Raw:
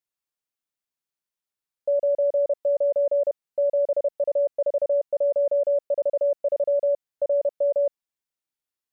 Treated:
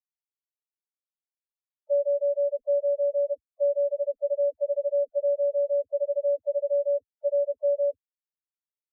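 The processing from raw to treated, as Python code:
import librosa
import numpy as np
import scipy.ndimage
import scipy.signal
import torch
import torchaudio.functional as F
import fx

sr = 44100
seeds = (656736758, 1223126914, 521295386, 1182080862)

y = fx.dispersion(x, sr, late='lows', ms=77.0, hz=460.0)
y = fx.dereverb_blind(y, sr, rt60_s=0.96)
y = fx.spec_topn(y, sr, count=2)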